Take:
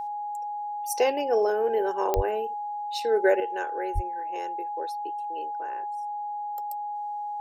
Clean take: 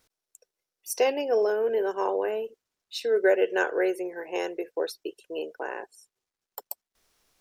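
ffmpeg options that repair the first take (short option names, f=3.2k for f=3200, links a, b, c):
-filter_complex "[0:a]adeclick=t=4,bandreject=f=830:w=30,asplit=3[a][b][c];[a]afade=t=out:st=2.15:d=0.02[d];[b]highpass=f=140:w=0.5412,highpass=f=140:w=1.3066,afade=t=in:st=2.15:d=0.02,afade=t=out:st=2.27:d=0.02[e];[c]afade=t=in:st=2.27:d=0.02[f];[d][e][f]amix=inputs=3:normalize=0,asplit=3[g][h][i];[g]afade=t=out:st=3.94:d=0.02[j];[h]highpass=f=140:w=0.5412,highpass=f=140:w=1.3066,afade=t=in:st=3.94:d=0.02,afade=t=out:st=4.06:d=0.02[k];[i]afade=t=in:st=4.06:d=0.02[l];[j][k][l]amix=inputs=3:normalize=0,asetnsamples=n=441:p=0,asendcmd='3.4 volume volume 8.5dB',volume=0dB"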